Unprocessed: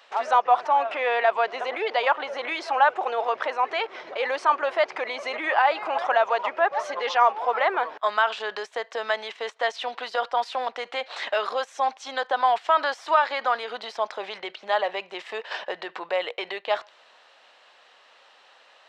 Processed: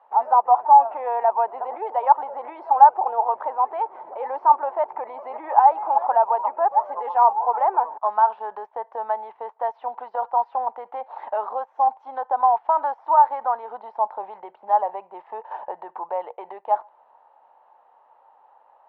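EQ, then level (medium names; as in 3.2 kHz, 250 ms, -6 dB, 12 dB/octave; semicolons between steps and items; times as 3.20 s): resonant low-pass 880 Hz, resonance Q 8; -7.0 dB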